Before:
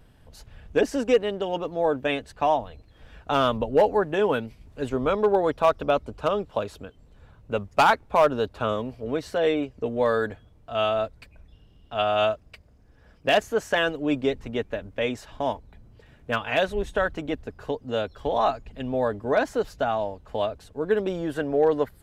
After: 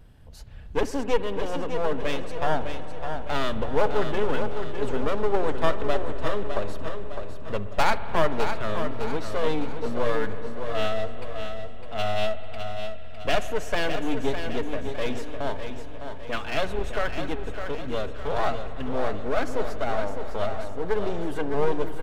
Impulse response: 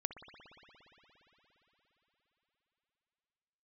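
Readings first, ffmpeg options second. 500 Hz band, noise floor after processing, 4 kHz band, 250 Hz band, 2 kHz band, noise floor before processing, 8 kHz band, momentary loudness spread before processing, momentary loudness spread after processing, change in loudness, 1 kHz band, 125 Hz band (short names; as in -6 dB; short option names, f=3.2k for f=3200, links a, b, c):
-3.5 dB, -30 dBFS, -2.0 dB, -2.5 dB, -2.5 dB, -55 dBFS, n/a, 10 LU, 9 LU, -4.0 dB, -3.5 dB, +1.5 dB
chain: -filter_complex "[0:a]aeval=exprs='clip(val(0),-1,0.0266)':c=same,aecho=1:1:607|1214|1821|2428|3035:0.422|0.194|0.0892|0.041|0.0189,asplit=2[a][b];[1:a]atrim=start_sample=2205,lowshelf=f=170:g=11[c];[b][c]afir=irnorm=-1:irlink=0,volume=-1dB[d];[a][d]amix=inputs=2:normalize=0,volume=-6dB"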